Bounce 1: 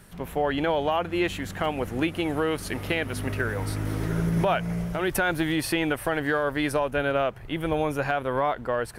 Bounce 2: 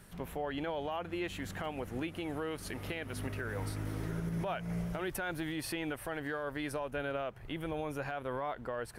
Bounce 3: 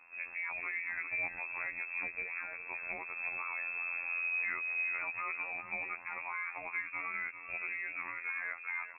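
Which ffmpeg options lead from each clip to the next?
ffmpeg -i in.wav -af "alimiter=limit=-23dB:level=0:latency=1:release=267,volume=-5dB" out.wav
ffmpeg -i in.wav -af "aecho=1:1:397:0.282,afftfilt=real='hypot(re,im)*cos(PI*b)':imag='0':win_size=2048:overlap=0.75,lowpass=frequency=2300:width_type=q:width=0.5098,lowpass=frequency=2300:width_type=q:width=0.6013,lowpass=frequency=2300:width_type=q:width=0.9,lowpass=frequency=2300:width_type=q:width=2.563,afreqshift=-2700,volume=2dB" out.wav

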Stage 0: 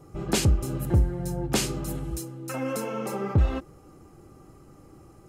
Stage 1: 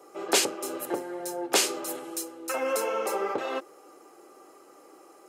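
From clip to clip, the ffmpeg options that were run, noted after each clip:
ffmpeg -i in.wav -af "highpass=frequency=390:width=0.5412,highpass=frequency=390:width=1.3066,volume=4.5dB" out.wav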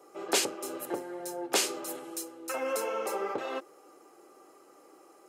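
ffmpeg -i in.wav -af "lowshelf=frequency=74:gain=7.5,volume=-4dB" out.wav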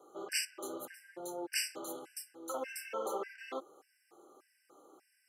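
ffmpeg -i in.wav -af "afftfilt=real='re*gt(sin(2*PI*1.7*pts/sr)*(1-2*mod(floor(b*sr/1024/1500),2)),0)':imag='im*gt(sin(2*PI*1.7*pts/sr)*(1-2*mod(floor(b*sr/1024/1500),2)),0)':win_size=1024:overlap=0.75,volume=-3.5dB" out.wav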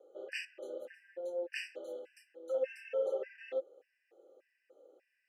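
ffmpeg -i in.wav -filter_complex "[0:a]asplit=3[link_01][link_02][link_03];[link_01]bandpass=frequency=530:width_type=q:width=8,volume=0dB[link_04];[link_02]bandpass=frequency=1840:width_type=q:width=8,volume=-6dB[link_05];[link_03]bandpass=frequency=2480:width_type=q:width=8,volume=-9dB[link_06];[link_04][link_05][link_06]amix=inputs=3:normalize=0,volume=8.5dB" out.wav

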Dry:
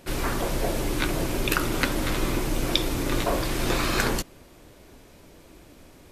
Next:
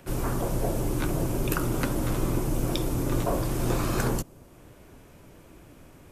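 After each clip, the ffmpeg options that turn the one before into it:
ffmpeg -i in.wav -filter_complex "[0:a]equalizer=frequency=125:width_type=o:width=1:gain=6,equalizer=frequency=2000:width_type=o:width=1:gain=-8,equalizer=frequency=4000:width_type=o:width=1:gain=-9,acrossover=split=220|1500|3000[link_01][link_02][link_03][link_04];[link_03]acompressor=mode=upward:threshold=-52dB:ratio=2.5[link_05];[link_01][link_02][link_05][link_04]amix=inputs=4:normalize=0,volume=-1.5dB" out.wav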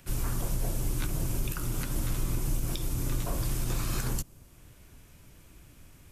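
ffmpeg -i in.wav -af "equalizer=frequency=510:width=0.36:gain=-13.5,alimiter=limit=-22dB:level=0:latency=1:release=120,volume=2dB" out.wav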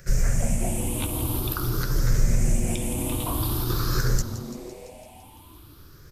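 ffmpeg -i in.wav -filter_complex "[0:a]afftfilt=real='re*pow(10,16/40*sin(2*PI*(0.56*log(max(b,1)*sr/1024/100)/log(2)-(0.48)*(pts-256)/sr)))':imag='im*pow(10,16/40*sin(2*PI*(0.56*log(max(b,1)*sr/1024/100)/log(2)-(0.48)*(pts-256)/sr)))':win_size=1024:overlap=0.75,asplit=2[link_01][link_02];[link_02]asplit=8[link_03][link_04][link_05][link_06][link_07][link_08][link_09][link_10];[link_03]adelay=169,afreqshift=-130,volume=-13dB[link_11];[link_04]adelay=338,afreqshift=-260,volume=-16.7dB[link_12];[link_05]adelay=507,afreqshift=-390,volume=-20.5dB[link_13];[link_06]adelay=676,afreqshift=-520,volume=-24.2dB[link_14];[link_07]adelay=845,afreqshift=-650,volume=-28dB[link_15];[link_08]adelay=1014,afreqshift=-780,volume=-31.7dB[link_16];[link_09]adelay=1183,afreqshift=-910,volume=-35.5dB[link_17];[link_10]adelay=1352,afreqshift=-1040,volume=-39.2dB[link_18];[link_11][link_12][link_13][link_14][link_15][link_16][link_17][link_18]amix=inputs=8:normalize=0[link_19];[link_01][link_19]amix=inputs=2:normalize=0,volume=3dB" out.wav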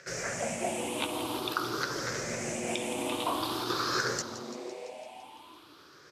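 ffmpeg -i in.wav -af "highpass=430,lowpass=5300,volume=3dB" out.wav

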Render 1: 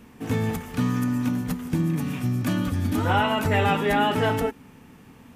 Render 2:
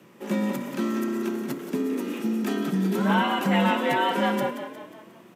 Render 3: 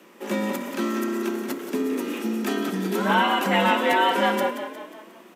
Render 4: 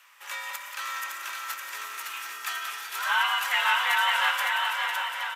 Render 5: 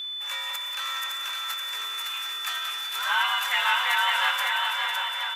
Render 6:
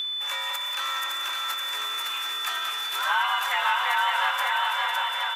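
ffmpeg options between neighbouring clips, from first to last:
ffmpeg -i in.wav -filter_complex "[0:a]afreqshift=99,equalizer=frequency=200:width_type=o:width=0.33:gain=5,equalizer=frequency=315:width_type=o:width=0.33:gain=-8,equalizer=frequency=10000:width_type=o:width=0.33:gain=-3,asplit=6[link_01][link_02][link_03][link_04][link_05][link_06];[link_02]adelay=179,afreqshift=31,volume=-10dB[link_07];[link_03]adelay=358,afreqshift=62,volume=-16.2dB[link_08];[link_04]adelay=537,afreqshift=93,volume=-22.4dB[link_09];[link_05]adelay=716,afreqshift=124,volume=-28.6dB[link_10];[link_06]adelay=895,afreqshift=155,volume=-34.8dB[link_11];[link_01][link_07][link_08][link_09][link_10][link_11]amix=inputs=6:normalize=0,volume=-2dB" out.wav
ffmpeg -i in.wav -af "highpass=frequency=220:width=0.5412,highpass=frequency=220:width=1.3066,lowshelf=frequency=460:gain=-3.5,volume=4.5dB" out.wav
ffmpeg -i in.wav -filter_complex "[0:a]highpass=frequency=1100:width=0.5412,highpass=frequency=1100:width=1.3066,asplit=2[link_01][link_02];[link_02]aecho=0:1:560|980|1295|1531|1708:0.631|0.398|0.251|0.158|0.1[link_03];[link_01][link_03]amix=inputs=2:normalize=0" out.wav
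ffmpeg -i in.wav -af "aeval=exprs='val(0)+0.0282*sin(2*PI*3500*n/s)':channel_layout=same" out.wav
ffmpeg -i in.wav -filter_complex "[0:a]acrossover=split=570|1200[link_01][link_02][link_03];[link_01]acompressor=threshold=-52dB:ratio=4[link_04];[link_02]acompressor=threshold=-30dB:ratio=4[link_05];[link_03]acompressor=threshold=-36dB:ratio=4[link_06];[link_04][link_05][link_06]amix=inputs=3:normalize=0,volume=6.5dB" out.wav

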